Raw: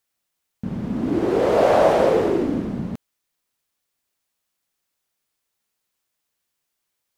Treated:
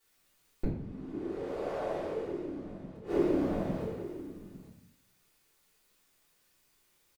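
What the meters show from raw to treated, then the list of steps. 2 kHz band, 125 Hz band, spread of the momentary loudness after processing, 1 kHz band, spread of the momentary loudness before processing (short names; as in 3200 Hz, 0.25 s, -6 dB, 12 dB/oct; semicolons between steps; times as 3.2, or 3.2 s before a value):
-16.5 dB, -9.5 dB, 16 LU, -18.5 dB, 16 LU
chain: feedback echo 0.854 s, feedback 20%, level -18.5 dB; flipped gate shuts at -24 dBFS, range -29 dB; shoebox room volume 75 m³, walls mixed, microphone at 3.2 m; gain -4 dB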